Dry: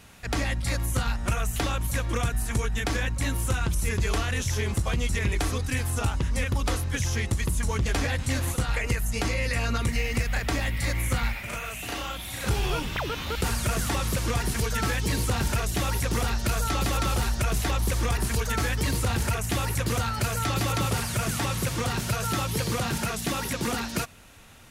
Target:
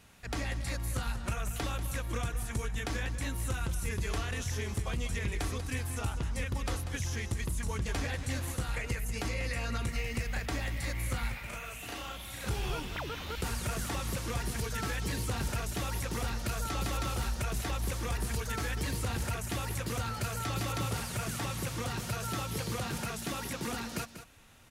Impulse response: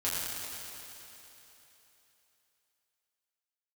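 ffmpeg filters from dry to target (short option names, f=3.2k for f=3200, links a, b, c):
-af "aecho=1:1:191:0.266,volume=-8dB"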